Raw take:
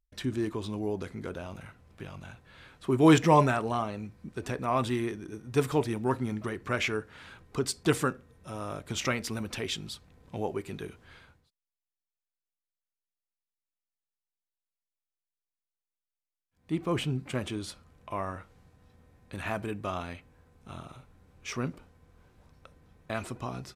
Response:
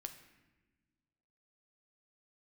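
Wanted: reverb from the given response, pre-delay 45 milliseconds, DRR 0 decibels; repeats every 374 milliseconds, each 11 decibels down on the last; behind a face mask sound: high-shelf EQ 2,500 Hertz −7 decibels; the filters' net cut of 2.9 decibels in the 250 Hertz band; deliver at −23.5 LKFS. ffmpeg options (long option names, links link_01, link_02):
-filter_complex "[0:a]equalizer=frequency=250:width_type=o:gain=-4,aecho=1:1:374|748|1122:0.282|0.0789|0.0221,asplit=2[link_01][link_02];[1:a]atrim=start_sample=2205,adelay=45[link_03];[link_02][link_03]afir=irnorm=-1:irlink=0,volume=4dB[link_04];[link_01][link_04]amix=inputs=2:normalize=0,highshelf=frequency=2500:gain=-7,volume=6.5dB"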